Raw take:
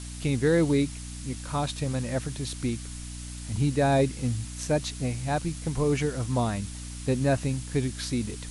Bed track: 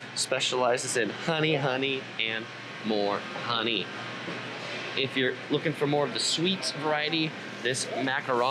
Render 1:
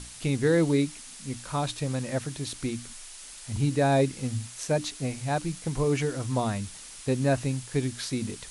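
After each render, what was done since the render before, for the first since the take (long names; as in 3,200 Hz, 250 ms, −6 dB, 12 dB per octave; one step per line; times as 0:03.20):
mains-hum notches 60/120/180/240/300 Hz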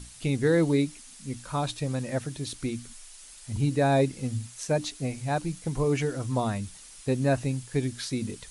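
broadband denoise 6 dB, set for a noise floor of −45 dBFS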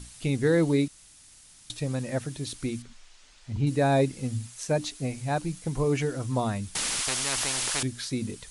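0:00.88–0:01.70: fill with room tone
0:02.82–0:03.67: high-frequency loss of the air 130 metres
0:06.75–0:07.83: every bin compressed towards the loudest bin 10 to 1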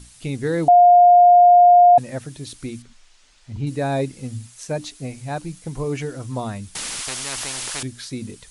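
0:00.68–0:01.98: beep over 708 Hz −7 dBFS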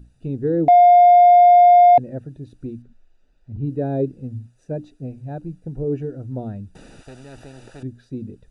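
adaptive Wiener filter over 41 samples
dynamic equaliser 380 Hz, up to +7 dB, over −33 dBFS, Q 1.5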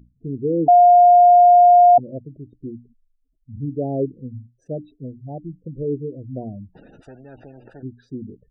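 gate on every frequency bin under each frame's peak −20 dB strong
low-shelf EQ 81 Hz −11 dB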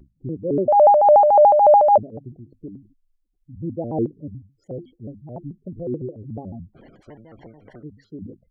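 amplitude tremolo 3.5 Hz, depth 44%
pitch modulation by a square or saw wave square 6.9 Hz, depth 250 cents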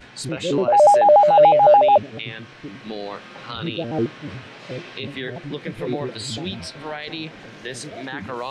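mix in bed track −4 dB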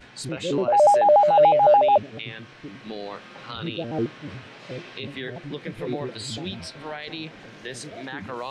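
level −3.5 dB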